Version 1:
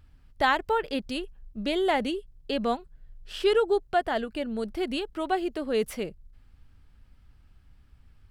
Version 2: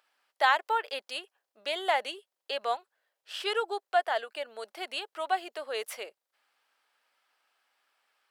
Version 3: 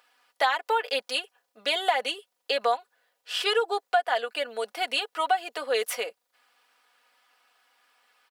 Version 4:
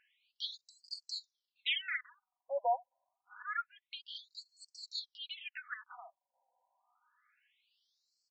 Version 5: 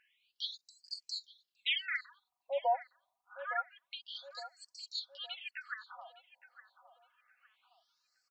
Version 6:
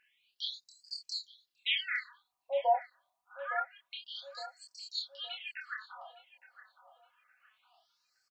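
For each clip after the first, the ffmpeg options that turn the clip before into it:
-af "highpass=f=580:w=0.5412,highpass=f=580:w=1.3066"
-af "aecho=1:1:4.1:0.7,acompressor=threshold=-27dB:ratio=6,volume=7dB"
-af "afftfilt=real='re*between(b*sr/1024,700*pow(6000/700,0.5+0.5*sin(2*PI*0.27*pts/sr))/1.41,700*pow(6000/700,0.5+0.5*sin(2*PI*0.27*pts/sr))*1.41)':imag='im*between(b*sr/1024,700*pow(6000/700,0.5+0.5*sin(2*PI*0.27*pts/sr))/1.41,700*pow(6000/700,0.5+0.5*sin(2*PI*0.27*pts/sr))*1.41)':win_size=1024:overlap=0.75,volume=-5dB"
-filter_complex "[0:a]asplit=2[a][b];[b]adelay=863,lowpass=f=1.2k:p=1,volume=-11dB,asplit=2[c][d];[d]adelay=863,lowpass=f=1.2k:p=1,volume=0.51,asplit=2[e][f];[f]adelay=863,lowpass=f=1.2k:p=1,volume=0.51,asplit=2[g][h];[h]adelay=863,lowpass=f=1.2k:p=1,volume=0.51,asplit=2[i][j];[j]adelay=863,lowpass=f=1.2k:p=1,volume=0.51[k];[a][c][e][g][i][k]amix=inputs=6:normalize=0,volume=1dB"
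-filter_complex "[0:a]asplit=2[a][b];[b]adelay=27,volume=-3dB[c];[a][c]amix=inputs=2:normalize=0"

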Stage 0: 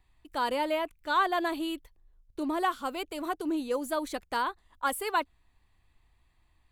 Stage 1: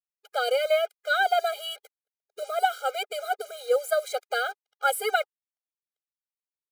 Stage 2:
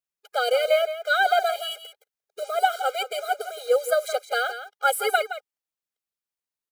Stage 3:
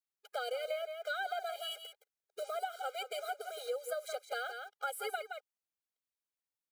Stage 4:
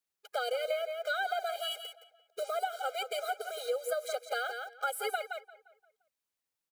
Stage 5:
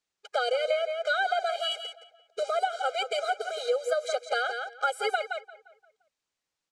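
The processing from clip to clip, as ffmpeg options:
-af "acrusher=bits=7:mix=0:aa=0.5,afftfilt=real='re*eq(mod(floor(b*sr/1024/410),2),1)':imag='im*eq(mod(floor(b*sr/1024/410),2),1)':win_size=1024:overlap=0.75,volume=8dB"
-af "aecho=1:1:168:0.266,volume=2.5dB"
-af "acompressor=threshold=-30dB:ratio=4,volume=-6.5dB"
-filter_complex "[0:a]asplit=2[a][b];[b]adelay=174,lowpass=f=3.3k:p=1,volume=-16.5dB,asplit=2[c][d];[d]adelay=174,lowpass=f=3.3k:p=1,volume=0.47,asplit=2[e][f];[f]adelay=174,lowpass=f=3.3k:p=1,volume=0.47,asplit=2[g][h];[h]adelay=174,lowpass=f=3.3k:p=1,volume=0.47[i];[a][c][e][g][i]amix=inputs=5:normalize=0,volume=4.5dB"
-af "lowpass=f=7.7k:w=0.5412,lowpass=f=7.7k:w=1.3066,volume=6dB"

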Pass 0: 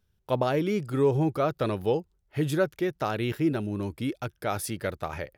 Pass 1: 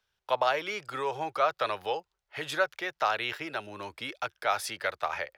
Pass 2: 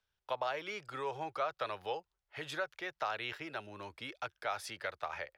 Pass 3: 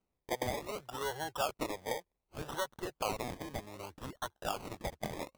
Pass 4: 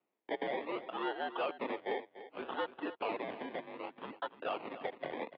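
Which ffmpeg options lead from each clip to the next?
-filter_complex "[0:a]acrossover=split=600 6300:gain=0.0708 1 0.224[a][b][c];[a][b][c]amix=inputs=3:normalize=0,acrossover=split=110|460|2000[d][e][f][g];[e]acompressor=threshold=-50dB:ratio=6[h];[d][h][f][g]amix=inputs=4:normalize=0,volume=5.5dB"
-af "lowshelf=f=110:g=7,alimiter=limit=-17.5dB:level=0:latency=1:release=206,highshelf=f=11k:g=-8,volume=-7dB"
-af "acrusher=samples=25:mix=1:aa=0.000001:lfo=1:lforange=15:lforate=0.65,volume=1dB"
-af "aresample=11025,asoftclip=type=hard:threshold=-33.5dB,aresample=44100,aecho=1:1:292:0.2,highpass=f=320:t=q:w=0.5412,highpass=f=320:t=q:w=1.307,lowpass=f=3.3k:t=q:w=0.5176,lowpass=f=3.3k:t=q:w=0.7071,lowpass=f=3.3k:t=q:w=1.932,afreqshift=-63,volume=3dB"

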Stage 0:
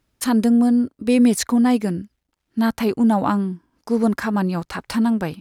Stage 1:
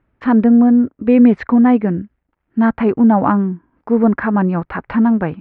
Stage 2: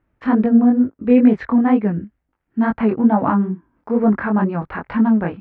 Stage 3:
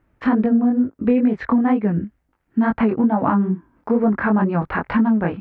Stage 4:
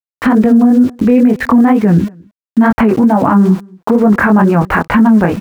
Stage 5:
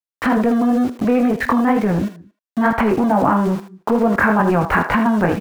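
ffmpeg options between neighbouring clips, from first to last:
-af "lowpass=f=2.1k:w=0.5412,lowpass=f=2.1k:w=1.3066,volume=5.5dB"
-af "flanger=delay=18.5:depth=5.9:speed=2.2"
-af "acompressor=threshold=-19dB:ratio=6,volume=5dB"
-filter_complex "[0:a]aeval=exprs='val(0)*gte(abs(val(0)),0.0119)':c=same,asplit=2[a][b];[b]adelay=227.4,volume=-29dB,highshelf=f=4k:g=-5.12[c];[a][c]amix=inputs=2:normalize=0,alimiter=level_in=14dB:limit=-1dB:release=50:level=0:latency=1,volume=-1dB"
-filter_complex "[0:a]acrossover=split=360[a][b];[a]asoftclip=type=hard:threshold=-14.5dB[c];[b]aecho=1:1:46|78:0.188|0.335[d];[c][d]amix=inputs=2:normalize=0,volume=-3.5dB"

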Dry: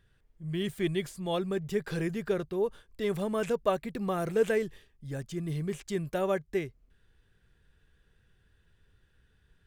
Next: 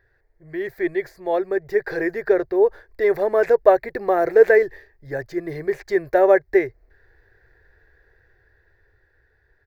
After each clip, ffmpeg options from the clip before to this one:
-af "firequalizer=gain_entry='entry(110,0);entry(180,-17);entry(350,7);entry(740,10);entry(1200,-1);entry(1800,13);entry(3000,-16);entry(4300,0);entry(8600,-18);entry(14000,0)':delay=0.05:min_phase=1,dynaudnorm=f=410:g=9:m=7dB,volume=1dB"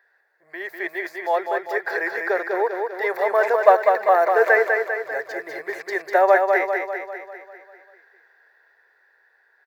-filter_complex "[0:a]highpass=f=840:t=q:w=1.5,asplit=2[a][b];[b]aecho=0:1:198|396|594|792|990|1188|1386|1584:0.596|0.334|0.187|0.105|0.0586|0.0328|0.0184|0.0103[c];[a][c]amix=inputs=2:normalize=0,volume=2dB"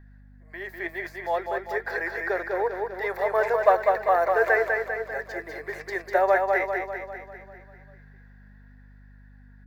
-af "aeval=exprs='val(0)+0.00631*(sin(2*PI*50*n/s)+sin(2*PI*2*50*n/s)/2+sin(2*PI*3*50*n/s)/3+sin(2*PI*4*50*n/s)/4+sin(2*PI*5*50*n/s)/5)':c=same,flanger=delay=2.6:depth=4.4:regen=75:speed=0.44:shape=triangular"

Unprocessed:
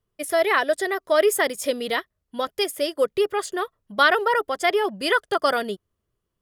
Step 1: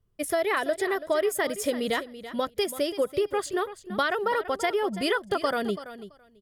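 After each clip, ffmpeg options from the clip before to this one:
-af "lowshelf=f=230:g=12,acompressor=threshold=-20dB:ratio=6,aecho=1:1:333|666:0.211|0.0317,volume=-2dB"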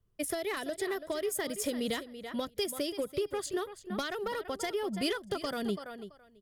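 -filter_complex "[0:a]aeval=exprs='0.251*(cos(1*acos(clip(val(0)/0.251,-1,1)))-cos(1*PI/2))+0.00708*(cos(5*acos(clip(val(0)/0.251,-1,1)))-cos(5*PI/2))+0.0141*(cos(7*acos(clip(val(0)/0.251,-1,1)))-cos(7*PI/2))':c=same,asoftclip=type=tanh:threshold=-18.5dB,acrossover=split=330|3000[a][b][c];[b]acompressor=threshold=-36dB:ratio=6[d];[a][d][c]amix=inputs=3:normalize=0"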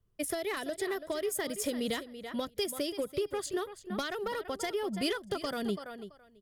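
-af anull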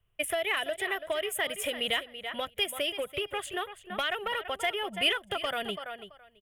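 -af "firequalizer=gain_entry='entry(100,0);entry(240,-10);entry(690,7);entry(970,3);entry(2900,15);entry(4500,-13);entry(8800,1)':delay=0.05:min_phase=1"

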